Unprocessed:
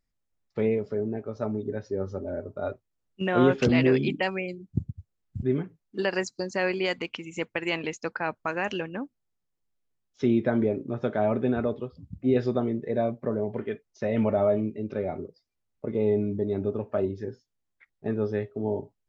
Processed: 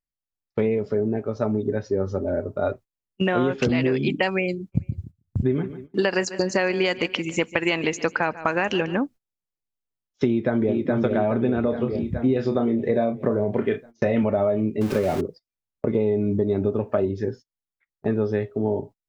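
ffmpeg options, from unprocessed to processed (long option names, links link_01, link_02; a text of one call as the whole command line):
ffmpeg -i in.wav -filter_complex "[0:a]asplit=3[link_01][link_02][link_03];[link_01]afade=type=out:start_time=4.72:duration=0.02[link_04];[link_02]aecho=1:1:146|292|438:0.119|0.0499|0.021,afade=type=in:start_time=4.72:duration=0.02,afade=type=out:start_time=8.94:duration=0.02[link_05];[link_03]afade=type=in:start_time=8.94:duration=0.02[link_06];[link_04][link_05][link_06]amix=inputs=3:normalize=0,asplit=2[link_07][link_08];[link_08]afade=type=in:start_time=10.26:duration=0.01,afade=type=out:start_time=10.78:duration=0.01,aecho=0:1:420|840|1260|1680|2100|2520|2940|3360:0.530884|0.318531|0.191118|0.114671|0.0688026|0.0412816|0.0247689|0.0148614[link_09];[link_07][link_09]amix=inputs=2:normalize=0,asettb=1/sr,asplit=3[link_10][link_11][link_12];[link_10]atrim=end=11.614[link_13];[link_11]atrim=start=11.61:end=14.23,asetpts=PTS-STARTPTS,afade=type=in:duration=0.004:curve=qsin,afade=type=out:start_time=2.616:duration=0.004:curve=qsin,asplit=2[link_14][link_15];[link_15]adelay=30,volume=-7dB[link_16];[link_14][link_16]amix=inputs=2:normalize=0,atrim=end_sample=115542[link_17];[link_12]atrim=start=14.226[link_18];[link_13][link_17]acrossfade=duration=0.004:curve1=hsin:curve2=qsin[link_19];[link_19][link_18]acrossfade=duration=0.004:curve1=qsin:curve2=hsin,asettb=1/sr,asplit=3[link_20][link_21][link_22];[link_20]atrim=end=14.814[link_23];[link_21]atrim=start=14.81:end=15.21,asetpts=PTS-STARTPTS,afade=type=in:duration=0.004:curve=qsin,afade=type=out:start_time=0.396:duration=0.004:curve=qsin,aeval=exprs='val(0)+0.5*0.015*sgn(val(0))':channel_layout=same[link_24];[link_22]atrim=start=15.206[link_25];[link_23][link_24]acrossfade=duration=0.004:curve1=hsin:curve2=qsin[link_26];[link_26][link_25]acrossfade=duration=0.004:curve1=qsin:curve2=hsin,dynaudnorm=framelen=820:gausssize=9:maxgain=4dB,agate=range=-21dB:threshold=-45dB:ratio=16:detection=peak,acompressor=threshold=-25dB:ratio=12,volume=7.5dB" out.wav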